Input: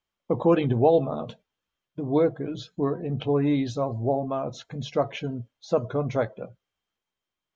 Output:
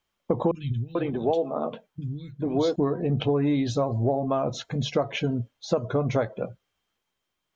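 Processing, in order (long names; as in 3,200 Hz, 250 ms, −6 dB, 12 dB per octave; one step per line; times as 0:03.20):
downward compressor 6 to 1, threshold −27 dBFS, peak gain reduction 12.5 dB
0:00.51–0:02.76: three-band delay without the direct sound lows, highs, mids 40/440 ms, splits 190/2,800 Hz
level +6.5 dB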